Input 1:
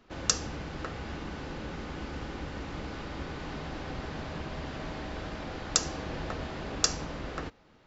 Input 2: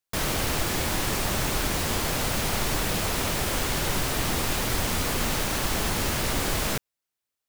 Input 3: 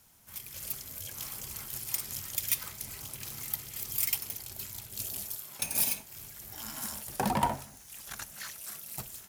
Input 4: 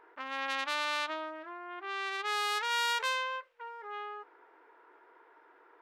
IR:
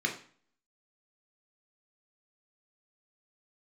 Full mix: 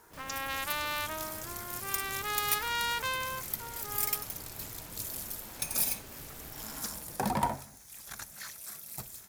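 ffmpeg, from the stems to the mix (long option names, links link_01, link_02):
-filter_complex "[0:a]asplit=2[link_01][link_02];[link_02]adelay=4.7,afreqshift=0.48[link_03];[link_01][link_03]amix=inputs=2:normalize=1,volume=-13.5dB[link_04];[1:a]alimiter=limit=-22.5dB:level=0:latency=1,volume=-19dB[link_05];[2:a]equalizer=frequency=2900:width_type=o:width=0.21:gain=-8,volume=-1.5dB[link_06];[3:a]volume=-1.5dB[link_07];[link_04][link_05][link_06][link_07]amix=inputs=4:normalize=0"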